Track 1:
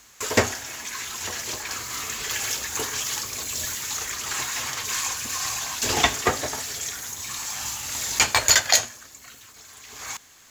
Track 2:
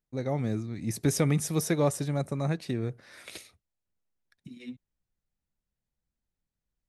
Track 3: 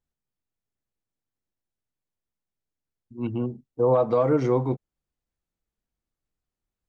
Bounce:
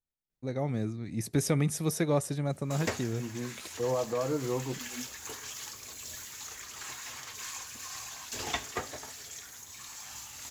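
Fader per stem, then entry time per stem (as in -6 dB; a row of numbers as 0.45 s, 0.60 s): -13.5 dB, -2.0 dB, -10.0 dB; 2.50 s, 0.30 s, 0.00 s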